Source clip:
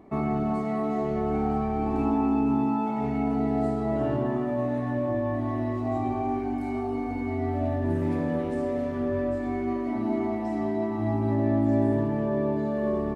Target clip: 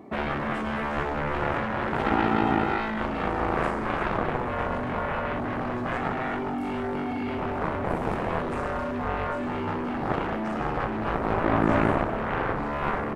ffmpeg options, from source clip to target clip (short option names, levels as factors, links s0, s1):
-af "highpass=110,aeval=exprs='0.237*(cos(1*acos(clip(val(0)/0.237,-1,1)))-cos(1*PI/2))+0.0944*(cos(7*acos(clip(val(0)/0.237,-1,1)))-cos(7*PI/2))':c=same"